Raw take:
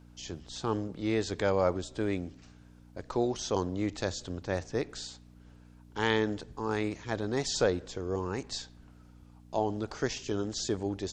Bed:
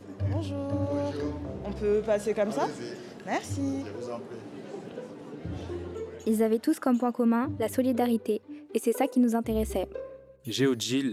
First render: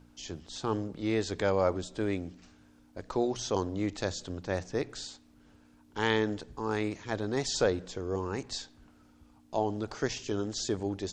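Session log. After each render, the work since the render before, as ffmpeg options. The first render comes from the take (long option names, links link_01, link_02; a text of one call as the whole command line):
ffmpeg -i in.wav -af "bandreject=frequency=60:width_type=h:width=4,bandreject=frequency=120:width_type=h:width=4,bandreject=frequency=180:width_type=h:width=4" out.wav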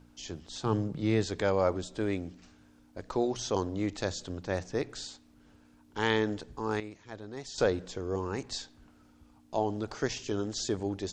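ffmpeg -i in.wav -filter_complex "[0:a]asettb=1/sr,asplit=3[link_01][link_02][link_03];[link_01]atrim=end=0.654[link_04];[link_02]atrim=start=0.65:end=1.26,asetpts=PTS-STARTPTS,afade=type=in:duration=0.004:curve=qsin,afade=type=out:start_time=0.606:duration=0.004:curve=qsin,equalizer=frequency=140:width_type=o:width=0.77:gain=13[link_05];[link_03]atrim=start=1.256[link_06];[link_04][link_05]acrossfade=duration=0.004:curve1=hsin:curve2=qsin[link_07];[link_07][link_06]acrossfade=duration=0.004:curve1=qsin:curve2=hsin,asplit=3[link_08][link_09][link_10];[link_08]atrim=end=6.802[link_11];[link_09]atrim=start=6.798:end=7.582,asetpts=PTS-STARTPTS,volume=-10.5dB[link_12];[link_10]atrim=start=7.578[link_13];[link_11][link_12]acrossfade=duration=0.004:curve1=hsin:curve2=hsin[link_14];[link_14][link_13]acrossfade=duration=0.004:curve1=hsin:curve2=hsin" out.wav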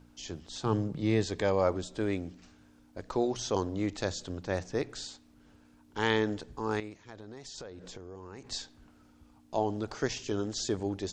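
ffmpeg -i in.wav -filter_complex "[0:a]asettb=1/sr,asplit=3[link_01][link_02][link_03];[link_01]atrim=end=0.964[link_04];[link_02]atrim=start=0.96:end=1.63,asetpts=PTS-STARTPTS,afade=type=in:duration=0.004:curve=qsin,afade=type=out:start_time=0.666:duration=0.004:curve=qsin,asuperstop=centerf=1400:order=4:qfactor=7.6[link_05];[link_03]atrim=start=1.626[link_06];[link_04][link_05]acrossfade=duration=0.004:curve1=hsin:curve2=qsin[link_07];[link_07][link_06]acrossfade=duration=0.004:curve1=qsin:curve2=hsin,asettb=1/sr,asplit=3[link_08][link_09][link_10];[link_08]atrim=end=7.004[link_11];[link_09]atrim=start=7:end=8.51,asetpts=PTS-STARTPTS,afade=type=in:duration=0.004:curve=qsin,afade=type=out:start_time=1.506:duration=0.004:curve=qsin,acompressor=threshold=-41dB:ratio=10:attack=3.2:release=140:knee=1:detection=peak[link_12];[link_10]atrim=start=8.506[link_13];[link_11][link_12]acrossfade=duration=0.004:curve1=hsin:curve2=qsin[link_14];[link_14][link_13]acrossfade=duration=0.004:curve1=qsin:curve2=hsin" out.wav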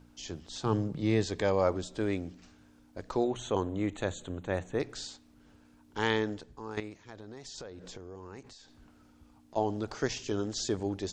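ffmpeg -i in.wav -filter_complex "[0:a]asettb=1/sr,asplit=3[link_01][link_02][link_03];[link_01]atrim=end=3.244[link_04];[link_02]atrim=start=3.24:end=4.8,asetpts=PTS-STARTPTS,afade=type=in:duration=0.004:curve=qsin,afade=type=out:start_time=1.556:duration=0.004:curve=qsin,asuperstop=centerf=5100:order=4:qfactor=1.7[link_05];[link_03]atrim=start=4.796[link_06];[link_04][link_05]acrossfade=duration=0.004:curve1=hsin:curve2=qsin[link_07];[link_07][link_06]acrossfade=duration=0.004:curve1=qsin:curve2=hsin,asplit=3[link_08][link_09][link_10];[link_08]afade=type=out:start_time=8.4:duration=0.02[link_11];[link_09]acompressor=threshold=-49dB:ratio=20:attack=3.2:release=140:knee=1:detection=peak,afade=type=in:start_time=8.4:duration=0.02,afade=type=out:start_time=9.55:duration=0.02[link_12];[link_10]afade=type=in:start_time=9.55:duration=0.02[link_13];[link_11][link_12][link_13]amix=inputs=3:normalize=0,asplit=2[link_14][link_15];[link_14]atrim=end=6.77,asetpts=PTS-STARTPTS,afade=type=out:start_time=5.98:duration=0.79:silence=0.281838[link_16];[link_15]atrim=start=6.77,asetpts=PTS-STARTPTS,afade=type=in:duration=0.004:curve=hsin:silence=0.281838[link_17];[link_16][link_17]concat=n=2:v=0:a=1" out.wav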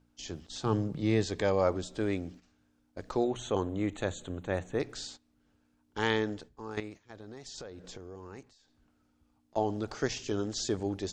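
ffmpeg -i in.wav -af "bandreject=frequency=970:width=20,agate=range=-11dB:threshold=-48dB:ratio=16:detection=peak" out.wav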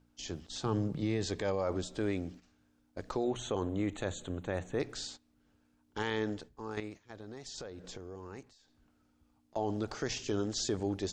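ffmpeg -i in.wav -af "alimiter=limit=-22.5dB:level=0:latency=1:release=40" out.wav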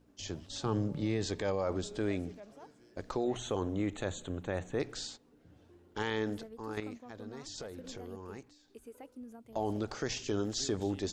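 ffmpeg -i in.wav -i bed.wav -filter_complex "[1:a]volume=-24.5dB[link_01];[0:a][link_01]amix=inputs=2:normalize=0" out.wav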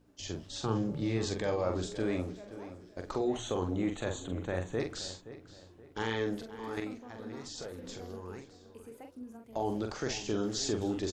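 ffmpeg -i in.wav -filter_complex "[0:a]asplit=2[link_01][link_02];[link_02]adelay=44,volume=-5.5dB[link_03];[link_01][link_03]amix=inputs=2:normalize=0,asplit=2[link_04][link_05];[link_05]adelay=523,lowpass=frequency=3300:poles=1,volume=-14dB,asplit=2[link_06][link_07];[link_07]adelay=523,lowpass=frequency=3300:poles=1,volume=0.37,asplit=2[link_08][link_09];[link_09]adelay=523,lowpass=frequency=3300:poles=1,volume=0.37,asplit=2[link_10][link_11];[link_11]adelay=523,lowpass=frequency=3300:poles=1,volume=0.37[link_12];[link_04][link_06][link_08][link_10][link_12]amix=inputs=5:normalize=0" out.wav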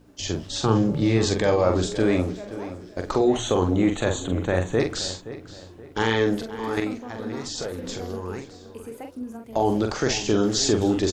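ffmpeg -i in.wav -af "volume=11.5dB" out.wav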